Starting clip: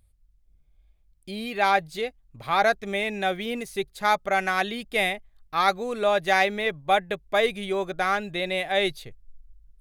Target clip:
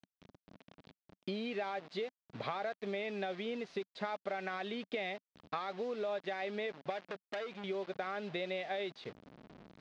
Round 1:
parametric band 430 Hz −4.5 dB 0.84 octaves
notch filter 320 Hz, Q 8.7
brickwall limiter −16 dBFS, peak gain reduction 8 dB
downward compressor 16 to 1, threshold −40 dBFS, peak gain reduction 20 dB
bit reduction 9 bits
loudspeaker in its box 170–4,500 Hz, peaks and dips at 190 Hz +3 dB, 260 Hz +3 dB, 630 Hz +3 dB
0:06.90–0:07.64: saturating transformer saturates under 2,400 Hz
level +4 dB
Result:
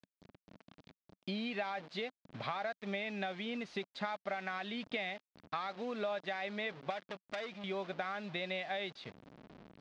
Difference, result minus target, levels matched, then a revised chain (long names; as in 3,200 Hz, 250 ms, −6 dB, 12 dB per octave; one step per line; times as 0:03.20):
500 Hz band −2.5 dB
parametric band 430 Hz +5.5 dB 0.84 octaves
notch filter 320 Hz, Q 8.7
brickwall limiter −16 dBFS, peak gain reduction 9 dB
downward compressor 16 to 1, threshold −40 dBFS, peak gain reduction 20.5 dB
bit reduction 9 bits
loudspeaker in its box 170–4,500 Hz, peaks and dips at 190 Hz +3 dB, 260 Hz +3 dB, 630 Hz +3 dB
0:06.90–0:07.64: saturating transformer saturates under 2,400 Hz
level +4 dB